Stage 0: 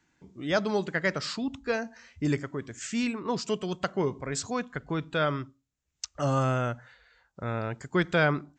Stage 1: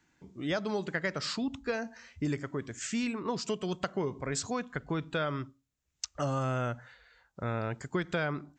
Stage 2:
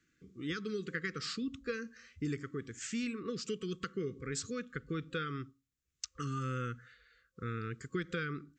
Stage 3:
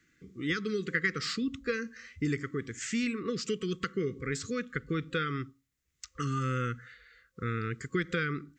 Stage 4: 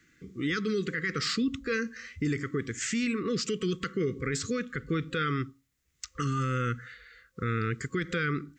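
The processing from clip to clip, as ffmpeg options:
-af "acompressor=threshold=0.0398:ratio=6"
-af "afftfilt=real='re*(1-between(b*sr/4096,520,1100))':imag='im*(1-between(b*sr/4096,520,1100))':win_size=4096:overlap=0.75,volume=0.596"
-af "deesser=0.95,equalizer=f=2000:w=5.9:g=7,volume=1.88"
-af "alimiter=level_in=1.33:limit=0.0631:level=0:latency=1:release=12,volume=0.75,volume=1.78"

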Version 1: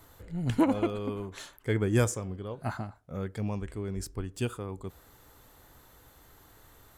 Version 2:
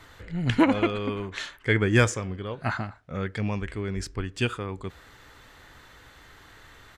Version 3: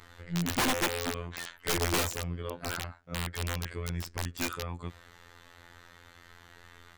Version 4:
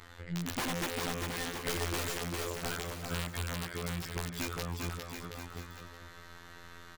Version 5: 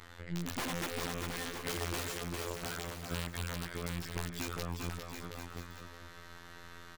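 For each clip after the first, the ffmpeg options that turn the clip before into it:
-af "firequalizer=gain_entry='entry(790,0);entry(1800,10);entry(13000,-15)':delay=0.05:min_phase=1,volume=1.58"
-af "afftfilt=real='hypot(re,im)*cos(PI*b)':imag='0':win_size=2048:overlap=0.75,aeval=exprs='(mod(11.9*val(0)+1,2)-1)/11.9':c=same"
-filter_complex "[0:a]acompressor=threshold=0.0178:ratio=4,asplit=2[s0][s1];[s1]aecho=0:1:400|720|976|1181|1345:0.631|0.398|0.251|0.158|0.1[s2];[s0][s2]amix=inputs=2:normalize=0,volume=1.12"
-af "aeval=exprs='if(lt(val(0),0),0.447*val(0),val(0))':c=same"

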